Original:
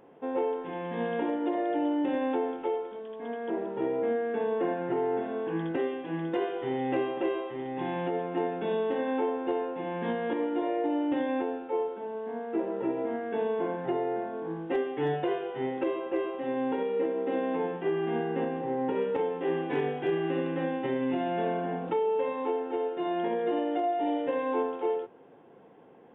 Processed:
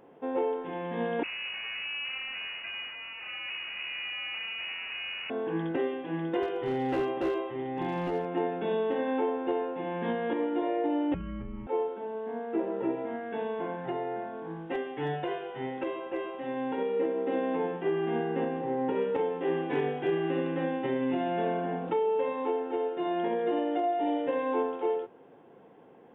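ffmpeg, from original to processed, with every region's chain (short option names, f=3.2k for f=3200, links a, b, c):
-filter_complex "[0:a]asettb=1/sr,asplit=3[a][b][c];[a]atrim=end=1.234[d];[b]atrim=start=1.23:end=5.3,asetpts=PTS-STARTPTS,afade=t=in:d=0.004:c=qsin,afade=t=out:st=4.066:d=0.004:c=qsin,acompressor=threshold=-30dB:ratio=8:attack=3.2:release=140:knee=1:detection=peak,acrusher=bits=4:dc=4:mix=0:aa=0.000001,lowpass=f=2.5k:t=q:w=0.5098,lowpass=f=2.5k:t=q:w=0.6013,lowpass=f=2.5k:t=q:w=0.9,lowpass=f=2.5k:t=q:w=2.563,afreqshift=-2900[e];[c]atrim=start=5.296[f];[d][e]acrossfade=d=0.004:c1=hsin:c2=qsin[g];[g][f]acrossfade=d=0.004:c1=qsin:c2=hsin,asettb=1/sr,asplit=3[h][i][j];[h]atrim=end=6.424[k];[i]atrim=start=6.42:end=8.25,asetpts=PTS-STARTPTS,afade=t=in:d=0.004:c=qsin,afade=t=out:st=1.826:d=0.004:c=qsin,equalizer=f=69:w=1.5:g=13,volume=25dB,asoftclip=hard,volume=-25dB,asplit=2[l][m];[m]adelay=18,volume=-14dB[n];[l][n]amix=inputs=2:normalize=0,atrim=end_sample=80703[o];[j]atrim=start=8.246[p];[k][o]acrossfade=d=0.004:c1=hsin:c2=qsin[q];[q][p]acrossfade=d=0.004:c1=qsin:c2=hsin,asettb=1/sr,asplit=3[r][s][t];[r]atrim=end=11.144[u];[s]atrim=start=11.14:end=11.67,asetpts=PTS-STARTPTS,afade=t=in:d=0.004:c=qsin,afade=t=out:st=0.526:d=0.004:c=qsin,acompressor=threshold=-33dB:ratio=6:attack=3.2:release=140:knee=1:detection=peak,afreqshift=-470[v];[t]atrim=start=11.666[w];[u][v]acrossfade=d=0.004:c1=hsin:c2=qsin[x];[x][w]acrossfade=d=0.004:c1=qsin:c2=hsin,asettb=1/sr,asplit=3[y][z][aa];[y]atrim=end=12.954[ab];[z]atrim=start=12.95:end=16.77,asetpts=PTS-STARTPTS,afade=t=in:d=0.004:c=qsin,afade=t=out:st=3.816:d=0.004:c=qsin,equalizer=f=380:t=o:w=1.2:g=-5.5,bandreject=f=1.2k:w=25[ac];[aa]atrim=start=16.766[ad];[ab][ac]acrossfade=d=0.004:c1=hsin:c2=qsin[ae];[ae][ad]acrossfade=d=0.004:c1=qsin:c2=hsin"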